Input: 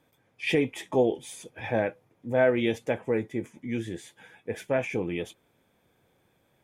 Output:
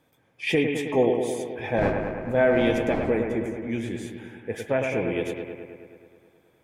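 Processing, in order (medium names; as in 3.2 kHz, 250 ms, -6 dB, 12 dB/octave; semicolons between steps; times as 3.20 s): 1.76–3.09 s: wind noise 470 Hz -37 dBFS; bucket-brigade echo 106 ms, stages 2048, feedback 71%, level -5.5 dB; trim +1.5 dB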